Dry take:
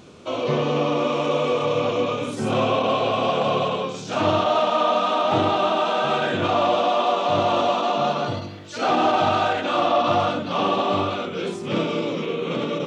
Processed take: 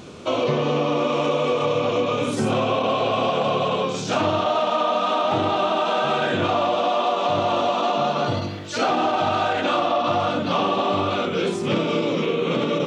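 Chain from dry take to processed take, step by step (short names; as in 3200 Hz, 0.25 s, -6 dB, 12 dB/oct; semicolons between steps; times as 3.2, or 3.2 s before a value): compressor, threshold -24 dBFS, peak gain reduction 9 dB; gain +6 dB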